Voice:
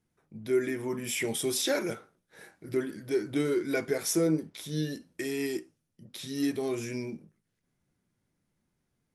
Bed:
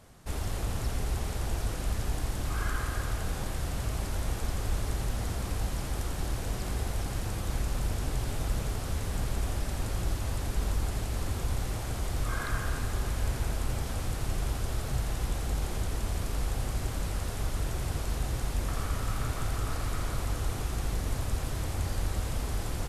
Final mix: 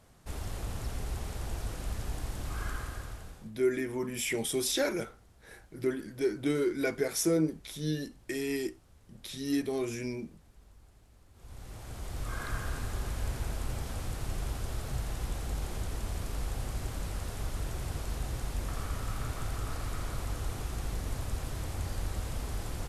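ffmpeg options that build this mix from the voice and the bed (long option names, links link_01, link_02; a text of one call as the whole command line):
ffmpeg -i stem1.wav -i stem2.wav -filter_complex "[0:a]adelay=3100,volume=-1dB[link_01];[1:a]volume=19dB,afade=type=out:start_time=2.7:duration=0.82:silence=0.0707946,afade=type=in:start_time=11.33:duration=1.15:silence=0.0630957[link_02];[link_01][link_02]amix=inputs=2:normalize=0" out.wav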